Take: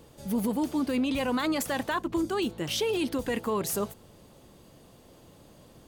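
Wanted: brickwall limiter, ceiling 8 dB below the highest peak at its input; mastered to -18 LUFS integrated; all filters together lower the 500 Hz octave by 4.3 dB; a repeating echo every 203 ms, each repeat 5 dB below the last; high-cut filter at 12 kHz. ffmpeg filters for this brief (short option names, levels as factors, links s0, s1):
-af "lowpass=12000,equalizer=f=500:t=o:g=-5.5,alimiter=level_in=1.5:limit=0.0631:level=0:latency=1,volume=0.668,aecho=1:1:203|406|609|812|1015|1218|1421:0.562|0.315|0.176|0.0988|0.0553|0.031|0.0173,volume=6.31"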